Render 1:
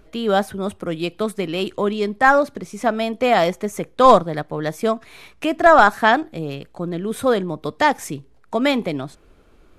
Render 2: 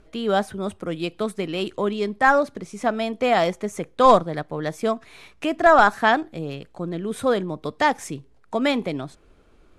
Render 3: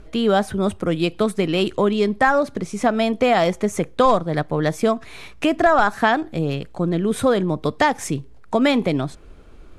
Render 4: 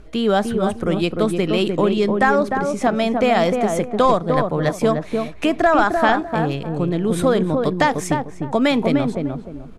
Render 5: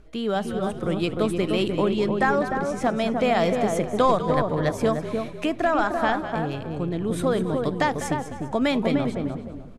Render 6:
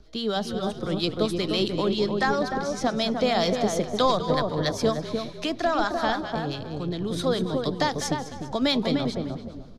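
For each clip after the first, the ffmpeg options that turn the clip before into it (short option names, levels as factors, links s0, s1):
-af "lowpass=f=11000:w=0.5412,lowpass=f=11000:w=1.3066,volume=0.708"
-af "lowshelf=f=140:g=6.5,acompressor=threshold=0.1:ratio=4,volume=2.11"
-filter_complex "[0:a]asplit=2[s0][s1];[s1]adelay=302,lowpass=f=910:p=1,volume=0.708,asplit=2[s2][s3];[s3]adelay=302,lowpass=f=910:p=1,volume=0.31,asplit=2[s4][s5];[s5]adelay=302,lowpass=f=910:p=1,volume=0.31,asplit=2[s6][s7];[s7]adelay=302,lowpass=f=910:p=1,volume=0.31[s8];[s0][s2][s4][s6][s8]amix=inputs=5:normalize=0"
-filter_complex "[0:a]asplit=4[s0][s1][s2][s3];[s1]adelay=199,afreqshift=-51,volume=0.266[s4];[s2]adelay=398,afreqshift=-102,volume=0.0794[s5];[s3]adelay=597,afreqshift=-153,volume=0.024[s6];[s0][s4][s5][s6]amix=inputs=4:normalize=0,dynaudnorm=f=220:g=9:m=3.76,volume=0.398"
-filter_complex "[0:a]acrossover=split=930[s0][s1];[s0]aeval=exprs='val(0)*(1-0.5/2+0.5/2*cos(2*PI*7.4*n/s))':c=same[s2];[s1]aeval=exprs='val(0)*(1-0.5/2-0.5/2*cos(2*PI*7.4*n/s))':c=same[s3];[s2][s3]amix=inputs=2:normalize=0,acrossover=split=290|520|5300[s4][s5][s6][s7];[s6]aexciter=amount=5.7:drive=8.4:freq=3800[s8];[s4][s5][s8][s7]amix=inputs=4:normalize=0"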